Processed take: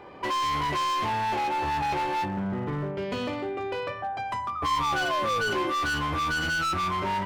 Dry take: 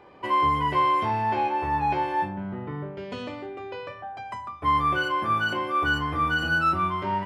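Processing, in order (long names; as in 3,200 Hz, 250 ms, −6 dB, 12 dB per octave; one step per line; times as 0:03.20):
in parallel at −1.5 dB: downward compressor, threshold −31 dBFS, peak gain reduction 11.5 dB
on the sum: gain into a clipping stage and back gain 25.5 dB
sound drawn into the spectrogram fall, 0:04.55–0:05.71, 320–1,300 Hz −33 dBFS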